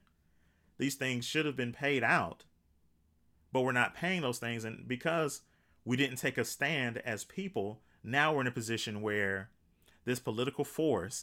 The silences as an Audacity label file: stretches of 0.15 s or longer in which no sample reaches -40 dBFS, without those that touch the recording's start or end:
2.330000	3.550000	silence
5.370000	5.860000	silence
7.720000	8.050000	silence
9.430000	10.070000	silence